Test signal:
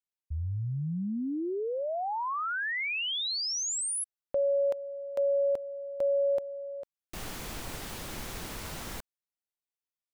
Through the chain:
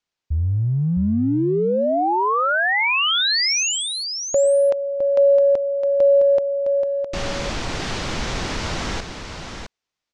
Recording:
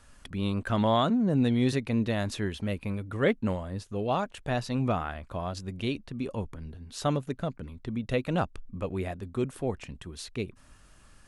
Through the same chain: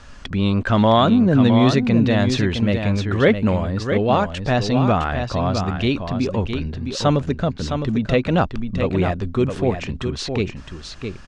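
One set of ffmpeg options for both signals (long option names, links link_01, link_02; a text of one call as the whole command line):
ffmpeg -i in.wav -filter_complex "[0:a]lowpass=frequency=6300:width=0.5412,lowpass=frequency=6300:width=1.3066,asplit=2[link_01][link_02];[link_02]acompressor=threshold=-34dB:ratio=6:attack=0.13:release=22:knee=1:detection=peak,volume=0dB[link_03];[link_01][link_03]amix=inputs=2:normalize=0,aecho=1:1:661:0.447,volume=8dB" out.wav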